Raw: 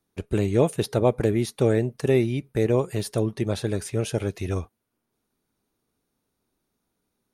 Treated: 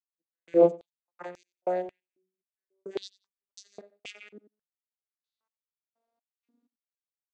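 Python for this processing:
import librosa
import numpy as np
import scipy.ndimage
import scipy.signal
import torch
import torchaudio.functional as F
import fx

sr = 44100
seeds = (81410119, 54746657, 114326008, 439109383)

p1 = fx.vocoder_glide(x, sr, note=52, semitones=7)
p2 = fx.step_gate(p1, sr, bpm=63, pattern='..x..x.x..', floor_db=-60.0, edge_ms=4.5)
p3 = p2 + fx.echo_feedback(p2, sr, ms=92, feedback_pct=22, wet_db=-22.0, dry=0)
p4 = fx.filter_held_highpass(p3, sr, hz=3.7, low_hz=280.0, high_hz=5800.0)
y = p4 * librosa.db_to_amplitude(-2.5)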